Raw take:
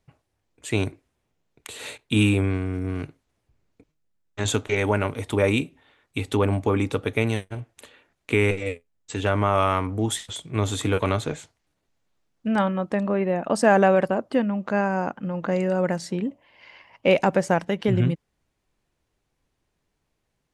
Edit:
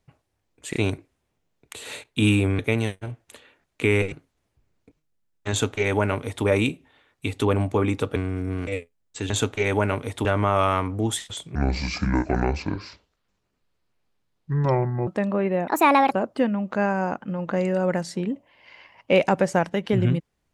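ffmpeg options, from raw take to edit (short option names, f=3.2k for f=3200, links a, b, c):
-filter_complex "[0:a]asplit=13[a][b][c][d][e][f][g][h][i][j][k][l][m];[a]atrim=end=0.732[n];[b]atrim=start=0.698:end=0.732[o];[c]atrim=start=0.698:end=2.532[p];[d]atrim=start=7.078:end=8.612[q];[e]atrim=start=3.038:end=7.082[r];[f]atrim=start=2.528:end=3.042[s];[g]atrim=start=8.608:end=9.242[t];[h]atrim=start=4.418:end=5.372[u];[i]atrim=start=9.238:end=10.544[v];[j]atrim=start=10.54:end=12.83,asetpts=PTS-STARTPTS,asetrate=28665,aresample=44100[w];[k]atrim=start=12.826:end=13.434[x];[l]atrim=start=13.43:end=14.07,asetpts=PTS-STARTPTS,asetrate=63504,aresample=44100[y];[m]atrim=start=14.066[z];[n][o]acrossfade=d=0.004:c1=hsin:c2=hsin[aa];[aa][p]acrossfade=d=0.004:c1=hsin:c2=hsin[ab];[ab][q]acrossfade=d=0.004:c1=hsin:c2=hsin[ac];[ac][r]acrossfade=d=0.004:c1=hsin:c2=hsin[ad];[ad][s]acrossfade=d=0.004:c1=hsin:c2=hsin[ae];[ae][t]acrossfade=d=0.004:c1=hsin:c2=hsin[af];[af][u]acrossfade=d=0.004:c1=hsin:c2=hsin[ag];[ag][v]acrossfade=d=0.004:c1=hsin:c2=hsin[ah];[ah][w]acrossfade=d=0.004:c1=hsin:c2=hsin[ai];[ai][x]acrossfade=d=0.004:c1=hsin:c2=hsin[aj];[aj][y]acrossfade=d=0.004:c1=hsin:c2=hsin[ak];[ak][z]acrossfade=d=0.004:c1=hsin:c2=hsin"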